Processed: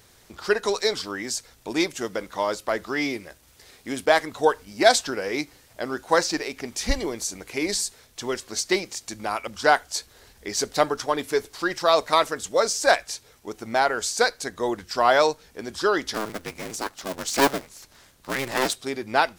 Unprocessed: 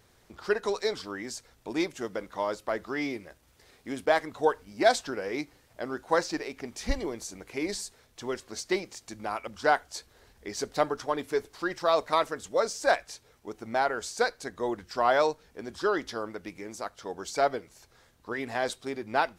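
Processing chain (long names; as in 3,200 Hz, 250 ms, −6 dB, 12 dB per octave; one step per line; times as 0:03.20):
0:16.14–0:18.76: sub-harmonics by changed cycles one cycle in 2, inverted
high-shelf EQ 2,700 Hz +7.5 dB
level +4.5 dB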